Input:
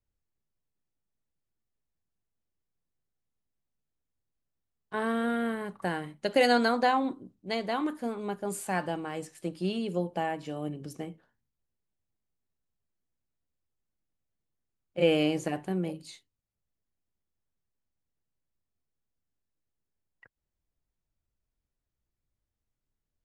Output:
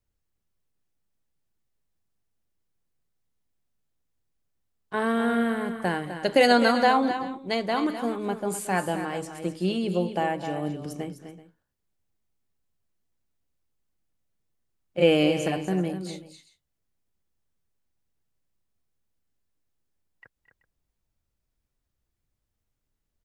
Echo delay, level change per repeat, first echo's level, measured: 0.223 s, no steady repeat, -19.0 dB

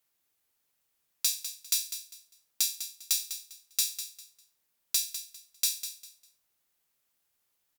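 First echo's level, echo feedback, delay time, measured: -11.0 dB, 25%, 0.2 s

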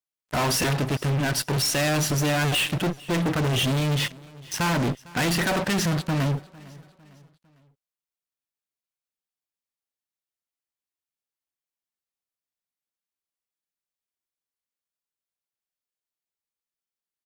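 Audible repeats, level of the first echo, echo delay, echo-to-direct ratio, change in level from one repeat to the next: 2, -22.0 dB, 0.453 s, -21.0 dB, -7.0 dB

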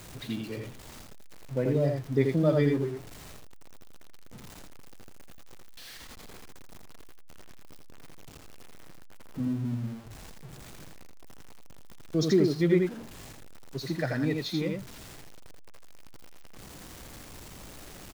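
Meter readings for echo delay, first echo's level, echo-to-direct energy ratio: 83 ms, -4.0 dB, -4.0 dB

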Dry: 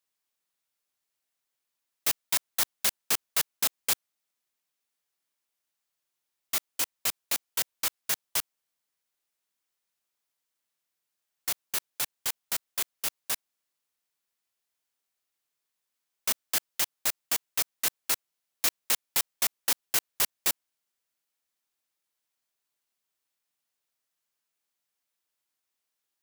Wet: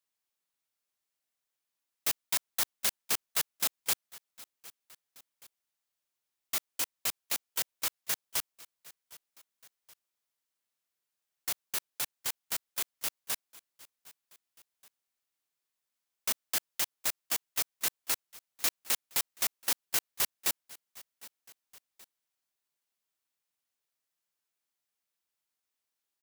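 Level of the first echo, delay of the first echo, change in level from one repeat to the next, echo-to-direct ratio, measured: -21.0 dB, 0.767 s, -5.0 dB, -20.0 dB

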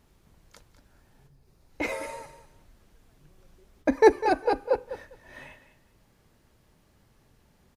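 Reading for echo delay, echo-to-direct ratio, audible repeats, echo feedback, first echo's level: 0.201 s, -13.0 dB, 2, 18%, -13.0 dB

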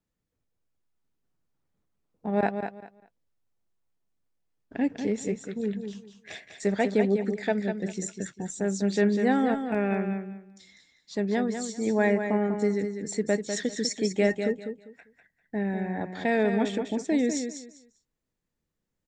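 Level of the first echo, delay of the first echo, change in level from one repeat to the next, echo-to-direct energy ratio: -7.5 dB, 0.198 s, -13.0 dB, -7.5 dB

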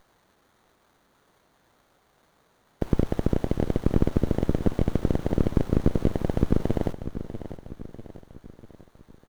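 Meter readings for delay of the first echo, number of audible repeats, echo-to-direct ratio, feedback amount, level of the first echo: 0.645 s, 4, -11.0 dB, 50%, -12.0 dB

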